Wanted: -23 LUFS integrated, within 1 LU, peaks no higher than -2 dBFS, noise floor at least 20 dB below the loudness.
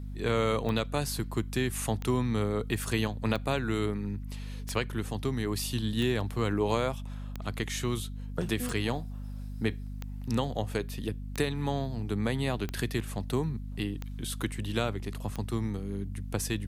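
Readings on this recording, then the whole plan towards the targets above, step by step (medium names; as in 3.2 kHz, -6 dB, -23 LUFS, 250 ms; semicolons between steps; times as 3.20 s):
clicks found 12; hum 50 Hz; highest harmonic 250 Hz; hum level -36 dBFS; loudness -32.0 LUFS; peak level -13.5 dBFS; loudness target -23.0 LUFS
-> de-click; de-hum 50 Hz, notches 5; trim +9 dB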